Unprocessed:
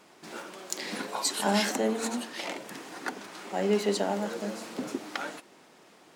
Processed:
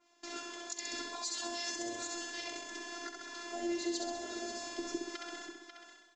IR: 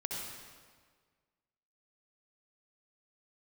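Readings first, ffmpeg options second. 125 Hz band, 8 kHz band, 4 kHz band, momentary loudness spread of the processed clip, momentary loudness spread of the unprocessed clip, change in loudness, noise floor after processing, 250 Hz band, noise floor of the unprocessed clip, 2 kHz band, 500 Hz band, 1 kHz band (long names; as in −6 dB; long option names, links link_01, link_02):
below −25 dB, −4.5 dB, −5.0 dB, 8 LU, 16 LU, −8.5 dB, −64 dBFS, −9.0 dB, −57 dBFS, −6.5 dB, −11.5 dB, −10.5 dB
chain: -filter_complex "[0:a]afftfilt=real='hypot(re,im)*cos(PI*b)':imag='0':win_size=512:overlap=0.75,agate=range=-13dB:threshold=-54dB:ratio=16:detection=peak,asplit=2[link_01][link_02];[link_02]aecho=0:1:65|130|195|260|325|390|455:0.562|0.315|0.176|0.0988|0.0553|0.031|0.0173[link_03];[link_01][link_03]amix=inputs=2:normalize=0,alimiter=limit=-23.5dB:level=0:latency=1:release=338,asplit=2[link_04][link_05];[link_05]aecho=0:1:541:0.224[link_06];[link_04][link_06]amix=inputs=2:normalize=0,acrossover=split=390|3000[link_07][link_08][link_09];[link_08]acompressor=threshold=-47dB:ratio=3[link_10];[link_07][link_10][link_09]amix=inputs=3:normalize=0,aemphasis=mode=production:type=50kf,aresample=16000,aresample=44100,adynamicequalizer=threshold=0.002:dfrequency=2100:dqfactor=0.7:tfrequency=2100:tqfactor=0.7:attack=5:release=100:ratio=0.375:range=1.5:mode=cutabove:tftype=highshelf,volume=1.5dB"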